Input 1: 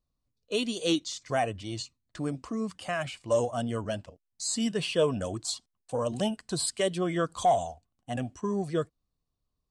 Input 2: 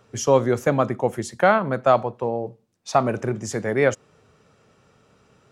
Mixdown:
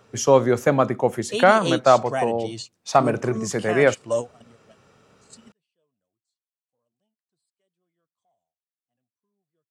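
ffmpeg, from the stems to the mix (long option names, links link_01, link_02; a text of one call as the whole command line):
ffmpeg -i stem1.wav -i stem2.wav -filter_complex "[0:a]highpass=frequency=110:width=0.5412,highpass=frequency=110:width=1.3066,adelay=800,volume=2dB[link_01];[1:a]lowshelf=frequency=100:gain=-6,volume=2dB,asplit=2[link_02][link_03];[link_03]apad=whole_len=463102[link_04];[link_01][link_04]sidechaingate=range=-52dB:threshold=-52dB:ratio=16:detection=peak[link_05];[link_05][link_02]amix=inputs=2:normalize=0" out.wav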